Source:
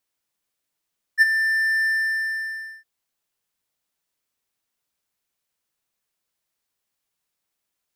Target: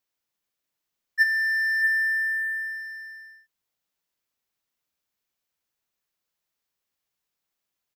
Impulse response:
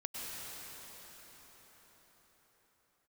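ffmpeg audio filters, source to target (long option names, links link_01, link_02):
-af "equalizer=frequency=9200:width=2.9:gain=-6,aecho=1:1:637:0.376,volume=-3dB"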